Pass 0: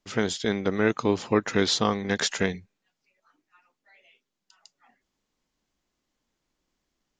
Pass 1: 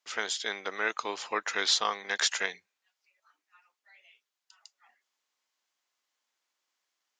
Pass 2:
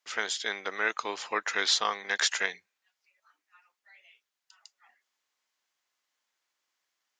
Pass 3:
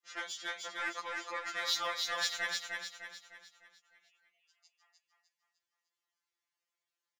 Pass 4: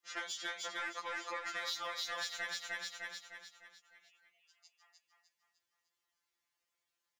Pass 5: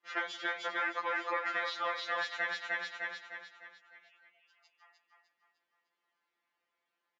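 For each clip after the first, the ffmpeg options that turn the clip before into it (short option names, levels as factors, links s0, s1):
-af "highpass=910"
-af "equalizer=f=1800:t=o:w=0.77:g=2.5"
-filter_complex "[0:a]aeval=exprs='0.266*(cos(1*acos(clip(val(0)/0.266,-1,1)))-cos(1*PI/2))+0.015*(cos(7*acos(clip(val(0)/0.266,-1,1)))-cos(7*PI/2))':c=same,asplit=2[s0][s1];[s1]aecho=0:1:303|606|909|1212|1515|1818:0.668|0.294|0.129|0.0569|0.0251|0.011[s2];[s0][s2]amix=inputs=2:normalize=0,afftfilt=real='re*2.83*eq(mod(b,8),0)':imag='im*2.83*eq(mod(b,8),0)':win_size=2048:overlap=0.75,volume=0.562"
-af "acompressor=threshold=0.01:ratio=6,volume=1.41"
-af "highpass=220,lowpass=2300,aecho=1:1:172:0.1,volume=2.51"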